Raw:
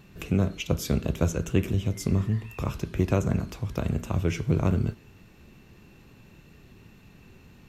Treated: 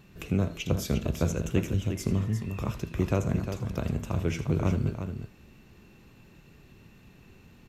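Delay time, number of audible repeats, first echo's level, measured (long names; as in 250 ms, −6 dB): 80 ms, 2, −15.0 dB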